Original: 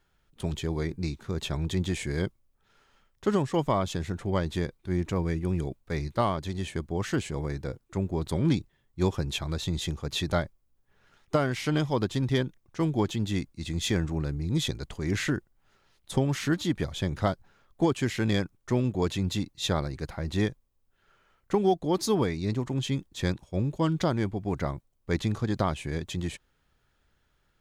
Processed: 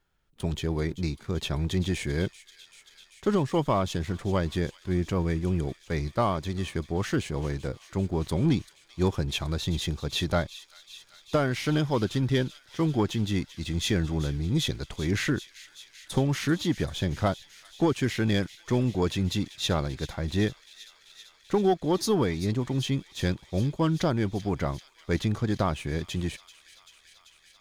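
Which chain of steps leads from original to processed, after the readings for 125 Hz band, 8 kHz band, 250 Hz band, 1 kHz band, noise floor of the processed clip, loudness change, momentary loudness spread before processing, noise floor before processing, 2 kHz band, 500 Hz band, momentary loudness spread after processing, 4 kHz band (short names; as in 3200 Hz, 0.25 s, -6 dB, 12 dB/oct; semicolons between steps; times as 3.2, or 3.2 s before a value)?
+1.5 dB, +0.5 dB, +1.0 dB, +0.5 dB, -60 dBFS, +1.0 dB, 7 LU, -71 dBFS, +1.5 dB, +1.0 dB, 8 LU, +2.0 dB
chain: dynamic EQ 7600 Hz, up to -6 dB, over -59 dBFS, Q 5.6; sample leveller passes 1; on a send: thin delay 0.388 s, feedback 81%, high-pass 2800 Hz, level -13 dB; on the sum: gain -2 dB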